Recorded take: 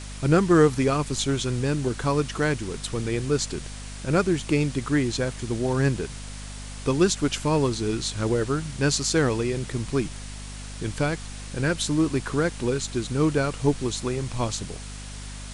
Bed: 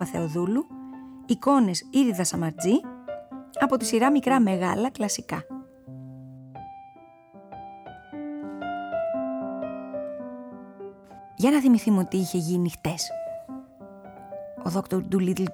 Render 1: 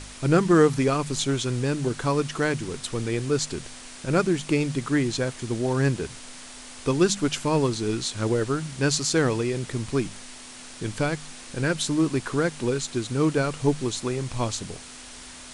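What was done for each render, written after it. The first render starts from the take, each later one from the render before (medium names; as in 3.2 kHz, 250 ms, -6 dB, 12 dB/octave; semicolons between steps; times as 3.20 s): de-hum 50 Hz, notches 4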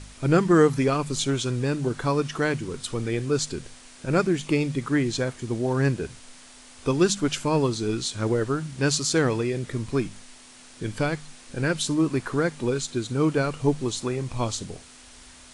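noise print and reduce 6 dB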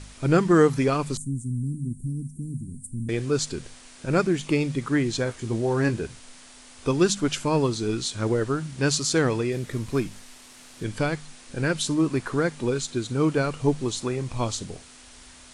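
1.17–3.09 s: Chebyshev band-stop 250–8600 Hz, order 4; 5.24–6.00 s: doubling 18 ms -7.5 dB; 9.52–10.84 s: CVSD coder 64 kbps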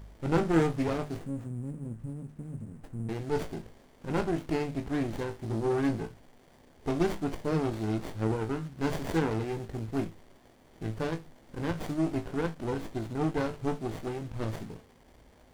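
feedback comb 55 Hz, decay 0.22 s, harmonics all, mix 90%; sliding maximum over 33 samples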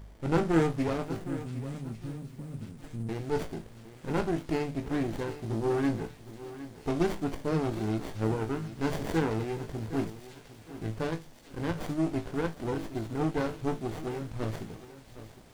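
feedback echo behind a high-pass 1144 ms, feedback 67%, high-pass 3.1 kHz, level -11 dB; bit-crushed delay 761 ms, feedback 35%, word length 8-bit, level -14 dB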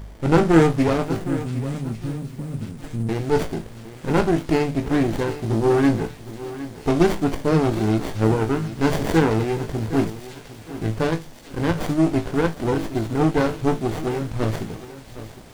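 trim +10.5 dB; peak limiter -2 dBFS, peak gain reduction 1 dB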